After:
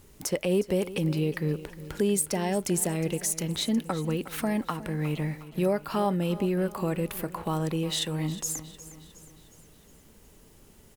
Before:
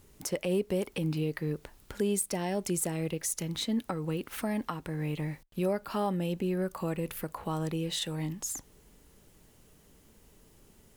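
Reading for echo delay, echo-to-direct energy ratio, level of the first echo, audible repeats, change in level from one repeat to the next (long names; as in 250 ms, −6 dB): 361 ms, −14.5 dB, −16.0 dB, 4, −6.0 dB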